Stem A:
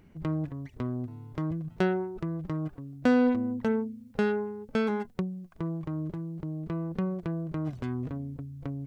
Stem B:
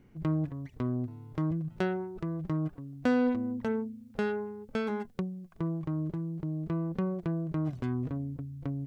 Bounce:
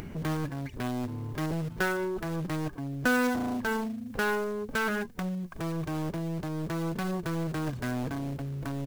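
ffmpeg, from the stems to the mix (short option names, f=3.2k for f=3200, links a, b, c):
-filter_complex "[0:a]acompressor=threshold=-46dB:ratio=2,aeval=exprs='0.0335*sin(PI/2*4.47*val(0)/0.0335)':c=same,volume=-2.5dB[a];[1:a]equalizer=f=1.6k:w=2.5:g=14,acrusher=bits=3:mode=log:mix=0:aa=0.000001,volume=-1,adelay=1.5,volume=-1.5dB[b];[a][b]amix=inputs=2:normalize=0,acompressor=mode=upward:threshold=-37dB:ratio=2.5"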